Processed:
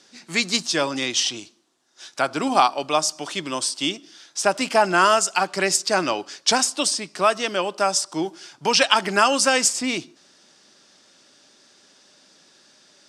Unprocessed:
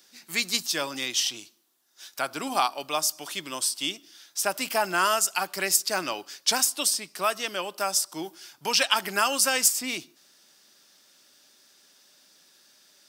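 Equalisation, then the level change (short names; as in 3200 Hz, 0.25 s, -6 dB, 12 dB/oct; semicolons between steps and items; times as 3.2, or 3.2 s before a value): LPF 8400 Hz 24 dB/oct; tilt shelf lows +3.5 dB, about 1100 Hz; +7.0 dB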